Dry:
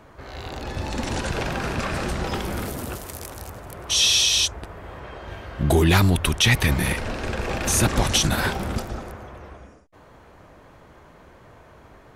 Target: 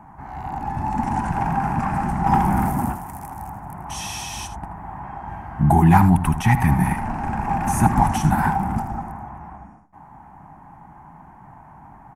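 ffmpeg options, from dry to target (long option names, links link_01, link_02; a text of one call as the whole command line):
ffmpeg -i in.wav -filter_complex "[0:a]firequalizer=gain_entry='entry(100,0);entry(160,9);entry(280,2);entry(500,-19);entry(810,15);entry(1200,-1);entry(1900,-3);entry(3700,-23);entry(5500,-14);entry(9400,-6)':delay=0.05:min_phase=1,asettb=1/sr,asplit=3[link_01][link_02][link_03];[link_01]atrim=end=2.264[link_04];[link_02]atrim=start=2.26:end=2.92,asetpts=PTS-STARTPTS,afade=type=in:duration=0.004:curve=qsin,afade=type=out:start_time=0.656:duration=0.004:curve=qsin,acontrast=44[link_05];[link_03]atrim=start=2.916[link_06];[link_04][link_05]acrossfade=duration=0.004:curve1=hsin:curve2=qsin[link_07];[link_07][link_06]acrossfade=duration=0.004:curve1=qsin:curve2=hsin,asplit=2[link_08][link_09];[link_09]aecho=0:1:79:0.237[link_10];[link_08][link_10]amix=inputs=2:normalize=0" out.wav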